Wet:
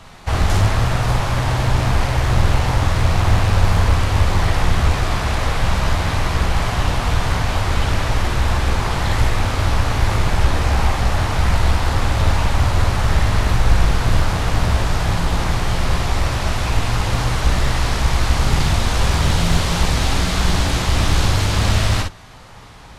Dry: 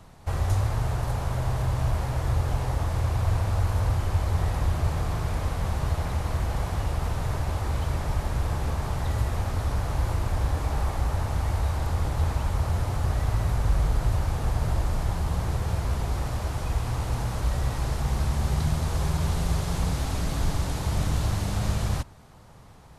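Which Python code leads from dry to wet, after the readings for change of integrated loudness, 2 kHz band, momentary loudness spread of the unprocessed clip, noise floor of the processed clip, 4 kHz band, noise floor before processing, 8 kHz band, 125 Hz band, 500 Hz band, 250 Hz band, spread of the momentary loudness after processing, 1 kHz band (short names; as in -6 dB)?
+9.0 dB, +15.5 dB, 3 LU, -34 dBFS, +16.0 dB, -48 dBFS, +11.5 dB, +7.5 dB, +10.0 dB, +9.5 dB, 3 LU, +11.5 dB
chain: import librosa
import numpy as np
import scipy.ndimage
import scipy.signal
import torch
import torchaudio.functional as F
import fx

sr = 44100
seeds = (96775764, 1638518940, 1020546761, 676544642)

p1 = fx.octave_divider(x, sr, octaves=2, level_db=0.0)
p2 = fx.peak_eq(p1, sr, hz=2900.0, db=10.5, octaves=3.0)
p3 = p2 + fx.room_early_taps(p2, sr, ms=(17, 48, 59), db=(-7.5, -7.0, -5.5), dry=0)
p4 = fx.doppler_dist(p3, sr, depth_ms=0.69)
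y = F.gain(torch.from_numpy(p4), 4.5).numpy()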